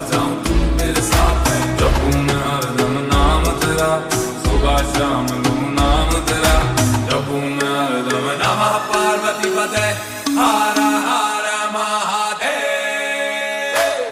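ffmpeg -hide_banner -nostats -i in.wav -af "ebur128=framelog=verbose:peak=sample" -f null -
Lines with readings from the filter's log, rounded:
Integrated loudness:
  I:         -17.0 LUFS
  Threshold: -27.0 LUFS
Loudness range:
  LRA:         1.1 LU
  Threshold: -36.9 LUFS
  LRA low:   -17.5 LUFS
  LRA high:  -16.4 LUFS
Sample peak:
  Peak:       -1.8 dBFS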